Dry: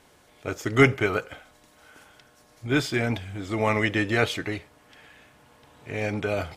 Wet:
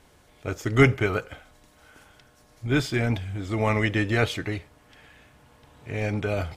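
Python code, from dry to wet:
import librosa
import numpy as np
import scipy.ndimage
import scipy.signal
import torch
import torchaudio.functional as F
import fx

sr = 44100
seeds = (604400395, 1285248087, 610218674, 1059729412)

y = fx.low_shelf(x, sr, hz=110.0, db=11.5)
y = F.gain(torch.from_numpy(y), -1.5).numpy()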